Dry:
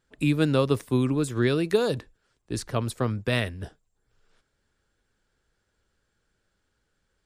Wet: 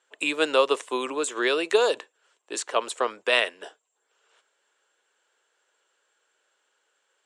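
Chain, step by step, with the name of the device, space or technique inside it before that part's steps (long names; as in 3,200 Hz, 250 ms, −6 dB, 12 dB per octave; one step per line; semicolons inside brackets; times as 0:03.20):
phone speaker on a table (loudspeaker in its box 440–8,700 Hz, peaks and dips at 1,000 Hz +4 dB, 2,900 Hz +6 dB, 4,900 Hz −6 dB, 7,500 Hz +7 dB)
level +5 dB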